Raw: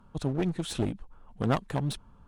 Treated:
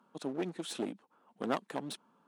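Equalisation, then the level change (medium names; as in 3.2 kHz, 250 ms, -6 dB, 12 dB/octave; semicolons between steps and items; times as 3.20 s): high-pass 230 Hz 24 dB/octave; -4.5 dB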